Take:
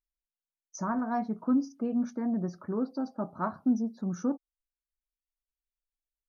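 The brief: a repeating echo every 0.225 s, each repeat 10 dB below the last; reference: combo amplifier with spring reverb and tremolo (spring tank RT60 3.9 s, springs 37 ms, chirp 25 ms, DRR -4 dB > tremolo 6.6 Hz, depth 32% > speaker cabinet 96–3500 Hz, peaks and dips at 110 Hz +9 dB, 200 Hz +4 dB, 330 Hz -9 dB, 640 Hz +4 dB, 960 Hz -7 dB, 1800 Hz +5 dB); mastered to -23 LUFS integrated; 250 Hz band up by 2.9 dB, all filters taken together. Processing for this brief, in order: bell 250 Hz +3 dB; feedback echo 0.225 s, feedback 32%, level -10 dB; spring tank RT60 3.9 s, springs 37 ms, chirp 25 ms, DRR -4 dB; tremolo 6.6 Hz, depth 32%; speaker cabinet 96–3500 Hz, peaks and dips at 110 Hz +9 dB, 200 Hz +4 dB, 330 Hz -9 dB, 640 Hz +4 dB, 960 Hz -7 dB, 1800 Hz +5 dB; gain +2 dB

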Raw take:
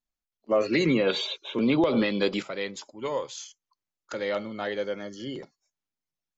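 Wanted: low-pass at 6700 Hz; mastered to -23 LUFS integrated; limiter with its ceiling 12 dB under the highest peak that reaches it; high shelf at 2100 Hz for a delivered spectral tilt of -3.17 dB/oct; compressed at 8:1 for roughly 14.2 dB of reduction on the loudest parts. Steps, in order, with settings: LPF 6700 Hz; high shelf 2100 Hz +9 dB; compressor 8:1, threshold -33 dBFS; gain +19.5 dB; limiter -14 dBFS

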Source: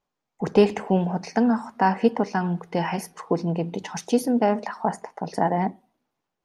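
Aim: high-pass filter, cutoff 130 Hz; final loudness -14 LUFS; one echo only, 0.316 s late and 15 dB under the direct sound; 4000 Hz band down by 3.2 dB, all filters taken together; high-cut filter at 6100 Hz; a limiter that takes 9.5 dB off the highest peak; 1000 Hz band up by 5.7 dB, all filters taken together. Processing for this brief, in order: HPF 130 Hz; LPF 6100 Hz; bell 1000 Hz +7.5 dB; bell 4000 Hz -4.5 dB; limiter -13.5 dBFS; echo 0.316 s -15 dB; gain +12 dB

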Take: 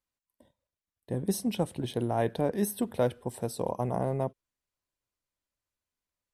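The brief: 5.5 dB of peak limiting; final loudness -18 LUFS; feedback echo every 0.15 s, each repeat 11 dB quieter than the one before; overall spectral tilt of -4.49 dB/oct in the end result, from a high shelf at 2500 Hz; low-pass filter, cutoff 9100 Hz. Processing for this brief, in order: LPF 9100 Hz; high shelf 2500 Hz -8.5 dB; limiter -21 dBFS; feedback echo 0.15 s, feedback 28%, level -11 dB; gain +16 dB

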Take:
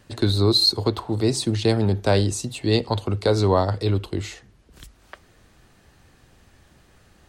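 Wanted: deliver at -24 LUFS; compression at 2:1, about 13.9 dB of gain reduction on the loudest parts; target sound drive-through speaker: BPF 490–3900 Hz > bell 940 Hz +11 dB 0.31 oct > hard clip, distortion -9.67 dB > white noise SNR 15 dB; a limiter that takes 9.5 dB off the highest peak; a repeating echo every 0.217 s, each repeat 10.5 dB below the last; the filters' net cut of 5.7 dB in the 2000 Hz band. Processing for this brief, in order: bell 2000 Hz -8 dB; compressor 2:1, threshold -41 dBFS; limiter -29 dBFS; BPF 490–3900 Hz; bell 940 Hz +11 dB 0.31 oct; feedback echo 0.217 s, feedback 30%, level -10.5 dB; hard clip -38.5 dBFS; white noise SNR 15 dB; gain +22 dB

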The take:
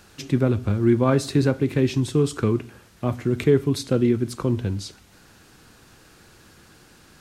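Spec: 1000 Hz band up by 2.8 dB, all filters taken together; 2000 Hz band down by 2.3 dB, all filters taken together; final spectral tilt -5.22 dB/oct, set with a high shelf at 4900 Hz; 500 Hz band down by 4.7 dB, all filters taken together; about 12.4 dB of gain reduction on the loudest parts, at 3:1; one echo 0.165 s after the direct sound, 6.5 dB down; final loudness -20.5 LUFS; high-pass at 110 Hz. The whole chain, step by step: HPF 110 Hz; bell 500 Hz -7.5 dB; bell 1000 Hz +7 dB; bell 2000 Hz -7 dB; high shelf 4900 Hz +8.5 dB; compressor 3:1, threshold -33 dBFS; echo 0.165 s -6.5 dB; gain +14 dB

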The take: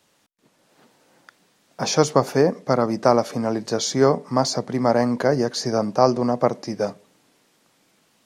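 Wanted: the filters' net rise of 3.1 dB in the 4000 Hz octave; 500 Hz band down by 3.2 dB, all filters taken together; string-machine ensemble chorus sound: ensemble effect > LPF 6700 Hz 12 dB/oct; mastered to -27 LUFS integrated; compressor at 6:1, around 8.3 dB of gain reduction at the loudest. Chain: bell 500 Hz -4 dB; bell 4000 Hz +5 dB; compressor 6:1, threshold -21 dBFS; ensemble effect; LPF 6700 Hz 12 dB/oct; gain +3.5 dB

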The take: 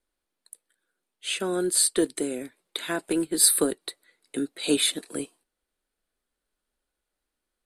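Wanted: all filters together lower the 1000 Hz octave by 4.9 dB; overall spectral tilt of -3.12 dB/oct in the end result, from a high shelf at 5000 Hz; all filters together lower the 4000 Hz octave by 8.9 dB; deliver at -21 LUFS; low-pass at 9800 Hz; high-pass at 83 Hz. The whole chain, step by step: HPF 83 Hz; LPF 9800 Hz; bell 1000 Hz -6.5 dB; bell 4000 Hz -7.5 dB; high shelf 5000 Hz -6 dB; gain +8.5 dB

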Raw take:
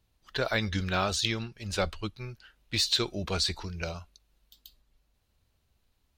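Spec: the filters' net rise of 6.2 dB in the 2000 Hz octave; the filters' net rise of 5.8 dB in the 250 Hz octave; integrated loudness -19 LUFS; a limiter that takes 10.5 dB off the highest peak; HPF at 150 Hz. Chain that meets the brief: HPF 150 Hz; bell 250 Hz +9 dB; bell 2000 Hz +8 dB; gain +11.5 dB; limiter -6 dBFS

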